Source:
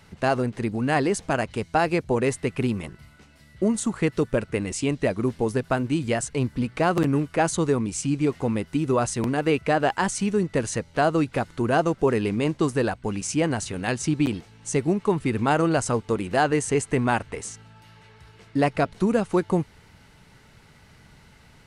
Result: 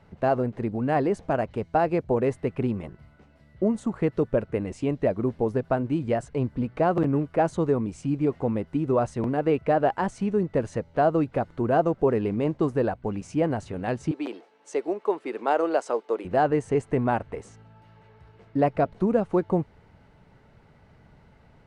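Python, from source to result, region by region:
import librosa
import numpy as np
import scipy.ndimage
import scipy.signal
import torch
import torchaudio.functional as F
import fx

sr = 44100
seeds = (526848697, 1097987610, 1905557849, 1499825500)

y = fx.chain(x, sr, fx.highpass(hz=350.0, slope=24),
    fx.dynamic_eq(hz=4600.0, q=0.75, threshold_db=-43.0, ratio=4.0, max_db=5), at=(14.11, 16.25))
y = fx.lowpass(y, sr, hz=1000.0, slope=6)
y = fx.peak_eq(y, sr, hz=620.0, db=5.0, octaves=0.97)
y = y * librosa.db_to_amplitude(-2.0)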